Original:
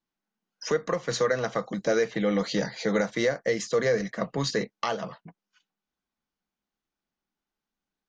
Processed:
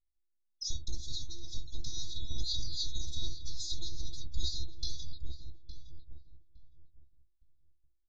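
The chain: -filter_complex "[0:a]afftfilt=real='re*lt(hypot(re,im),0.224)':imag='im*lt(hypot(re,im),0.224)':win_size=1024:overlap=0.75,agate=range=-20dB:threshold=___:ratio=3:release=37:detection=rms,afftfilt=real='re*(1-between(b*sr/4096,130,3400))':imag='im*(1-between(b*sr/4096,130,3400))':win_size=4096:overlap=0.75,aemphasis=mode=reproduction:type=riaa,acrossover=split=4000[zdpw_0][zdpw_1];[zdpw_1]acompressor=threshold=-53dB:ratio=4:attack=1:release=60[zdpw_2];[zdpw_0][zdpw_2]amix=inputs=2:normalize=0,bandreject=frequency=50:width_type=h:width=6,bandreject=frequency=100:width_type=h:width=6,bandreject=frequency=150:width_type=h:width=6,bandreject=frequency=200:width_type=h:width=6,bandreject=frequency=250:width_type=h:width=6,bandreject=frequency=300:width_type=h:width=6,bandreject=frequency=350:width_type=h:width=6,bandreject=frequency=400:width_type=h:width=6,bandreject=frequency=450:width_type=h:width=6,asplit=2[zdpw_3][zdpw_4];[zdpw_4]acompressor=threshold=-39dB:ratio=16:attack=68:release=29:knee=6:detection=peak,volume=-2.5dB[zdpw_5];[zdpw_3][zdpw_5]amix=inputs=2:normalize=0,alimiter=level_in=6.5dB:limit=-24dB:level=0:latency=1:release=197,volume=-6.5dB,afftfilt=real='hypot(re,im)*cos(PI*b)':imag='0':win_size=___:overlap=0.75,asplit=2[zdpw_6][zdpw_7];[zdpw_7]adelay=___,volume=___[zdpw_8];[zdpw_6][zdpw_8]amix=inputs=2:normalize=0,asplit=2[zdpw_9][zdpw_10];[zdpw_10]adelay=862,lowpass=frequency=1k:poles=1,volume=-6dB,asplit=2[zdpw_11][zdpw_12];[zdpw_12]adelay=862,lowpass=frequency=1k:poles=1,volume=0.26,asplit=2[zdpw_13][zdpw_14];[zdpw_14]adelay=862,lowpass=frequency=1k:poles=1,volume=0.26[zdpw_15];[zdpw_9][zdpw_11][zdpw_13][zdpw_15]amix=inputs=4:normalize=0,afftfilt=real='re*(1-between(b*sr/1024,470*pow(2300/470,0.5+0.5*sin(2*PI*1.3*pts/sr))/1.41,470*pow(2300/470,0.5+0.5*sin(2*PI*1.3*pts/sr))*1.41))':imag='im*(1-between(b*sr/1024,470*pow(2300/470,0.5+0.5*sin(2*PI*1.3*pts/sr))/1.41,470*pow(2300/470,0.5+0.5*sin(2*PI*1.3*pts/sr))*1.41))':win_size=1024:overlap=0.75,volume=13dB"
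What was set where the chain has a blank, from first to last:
-53dB, 512, 15, -13dB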